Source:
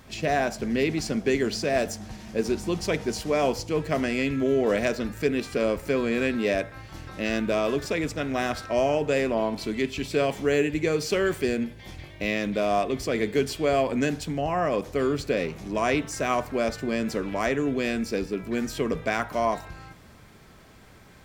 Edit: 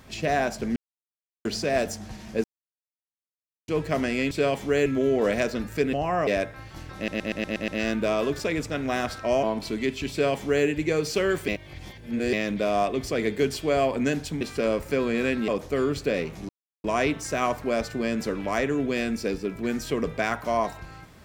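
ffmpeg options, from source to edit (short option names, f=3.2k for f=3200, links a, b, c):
-filter_complex "[0:a]asplit=21[a][b][c][d][e][f][g][h][i][j][k][l][m][n][o][p][q][r][s][t][u];[a]atrim=end=0.76,asetpts=PTS-STARTPTS,afade=t=out:st=0.756:d=0.004:c=hsin[v];[b]atrim=start=0.76:end=1.45,asetpts=PTS-STARTPTS,volume=0[w];[c]atrim=start=1.45:end=2.44,asetpts=PTS-STARTPTS,afade=t=in:d=0.004:c=hsin,afade=t=out:st=0.986:d=0.004:c=hsin[x];[d]atrim=start=2.44:end=3.68,asetpts=PTS-STARTPTS,volume=0[y];[e]atrim=start=3.68:end=4.312,asetpts=PTS-STARTPTS,afade=t=in:d=0.004:c=hsin[z];[f]atrim=start=10.068:end=10.622[aa];[g]atrim=start=4.308:end=5.382[ab];[h]atrim=start=14.368:end=14.712[ac];[i]atrim=start=6.448:end=7.262[ad];[j]atrim=start=7.138:end=7.262[ae];[k]atrim=start=7.138:end=7.262[af];[l]atrim=start=7.138:end=7.262[ag];[m]atrim=start=7.138:end=7.262[ah];[n]atrim=start=7.138:end=7.262[ai];[o]atrim=start=7.138:end=8.892[aj];[p]atrim=start=9.388:end=11.442[ak];[q]atrim=start=11.438:end=12.292,asetpts=PTS-STARTPTS,areverse[al];[r]atrim=start=12.288:end=14.372[am];[s]atrim=start=5.378:end=6.452[an];[t]atrim=start=14.708:end=15.72,asetpts=PTS-STARTPTS,afade=t=out:st=1.008:d=0.004:c=hsin,apad=pad_dur=0.35[ao];[u]atrim=start=15.72,asetpts=PTS-STARTPTS,afade=t=in:d=0.004:c=hsin[ap];[v][w][x][y][z]concat=n=5:v=0:a=1[aq];[aq][aa]acrossfade=d=0.004:c1=hsin:c2=hsin[ar];[ar][ab]acrossfade=d=0.004:c1=hsin:c2=hsin[as];[as][ac]acrossfade=d=0.004:c1=hsin:c2=hsin[at];[at][ad]acrossfade=d=0.004:c1=hsin:c2=hsin[au];[au][ae]acrossfade=d=0.004:c1=hsin:c2=hsin[av];[av][af]acrossfade=d=0.004:c1=hsin:c2=hsin[aw];[aw][ag]acrossfade=d=0.004:c1=hsin:c2=hsin[ax];[ax][ah]acrossfade=d=0.004:c1=hsin:c2=hsin[ay];[ay][ai]acrossfade=d=0.004:c1=hsin:c2=hsin[az];[az][aj]acrossfade=d=0.004:c1=hsin:c2=hsin[ba];[ba][ak]acrossfade=d=0.004:c1=hsin:c2=hsin[bb];[bb][al]acrossfade=d=0.004:c1=hsin:c2=hsin[bc];[bc][am]acrossfade=d=0.004:c1=hsin:c2=hsin[bd];[bd][an]acrossfade=d=0.004:c1=hsin:c2=hsin[be];[ao][ap]concat=n=2:v=0:a=1[bf];[be][bf]acrossfade=d=0.004:c1=hsin:c2=hsin"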